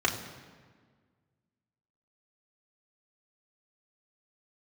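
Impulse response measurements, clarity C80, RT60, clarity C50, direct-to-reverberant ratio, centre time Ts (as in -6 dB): 10.0 dB, 1.6 s, 9.0 dB, -1.5 dB, 27 ms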